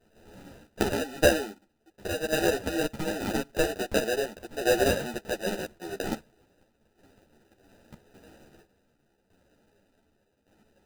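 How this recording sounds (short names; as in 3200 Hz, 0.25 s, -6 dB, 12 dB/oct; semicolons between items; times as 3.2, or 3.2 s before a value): tremolo saw down 0.86 Hz, depth 70%; aliases and images of a low sample rate 1100 Hz, jitter 0%; a shimmering, thickened sound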